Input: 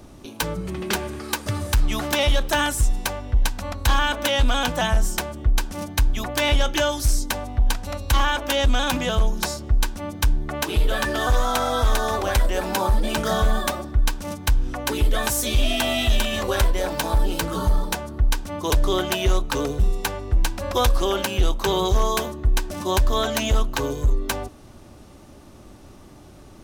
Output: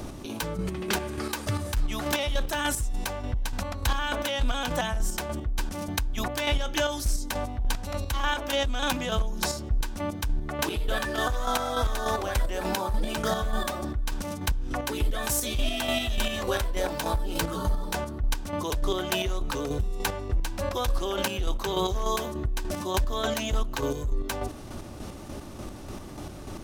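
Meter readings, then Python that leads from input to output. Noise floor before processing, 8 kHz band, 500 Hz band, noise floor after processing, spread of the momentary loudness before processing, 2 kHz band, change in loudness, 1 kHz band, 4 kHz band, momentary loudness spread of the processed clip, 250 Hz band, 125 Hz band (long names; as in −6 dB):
−45 dBFS, −5.0 dB, −5.0 dB, −40 dBFS, 6 LU, −5.5 dB, −6.0 dB, −5.5 dB, −6.0 dB, 6 LU, −4.5 dB, −7.0 dB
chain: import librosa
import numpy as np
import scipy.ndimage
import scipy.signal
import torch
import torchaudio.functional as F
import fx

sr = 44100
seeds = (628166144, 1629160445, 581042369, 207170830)

y = fx.chopper(x, sr, hz=3.4, depth_pct=60, duty_pct=35)
y = fx.env_flatten(y, sr, amount_pct=50)
y = F.gain(torch.from_numpy(y), -7.5).numpy()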